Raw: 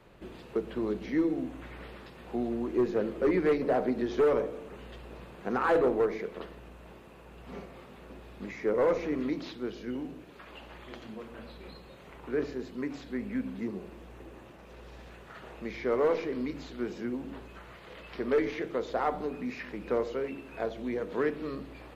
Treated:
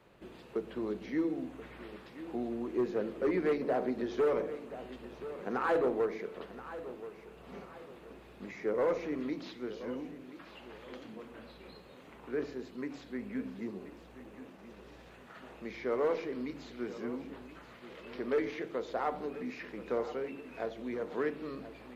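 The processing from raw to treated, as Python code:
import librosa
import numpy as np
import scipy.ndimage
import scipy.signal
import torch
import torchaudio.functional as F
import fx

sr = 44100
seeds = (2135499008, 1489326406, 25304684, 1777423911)

p1 = fx.low_shelf(x, sr, hz=80.0, db=-9.0)
p2 = p1 + fx.echo_feedback(p1, sr, ms=1029, feedback_pct=36, wet_db=-14, dry=0)
y = p2 * librosa.db_to_amplitude(-4.0)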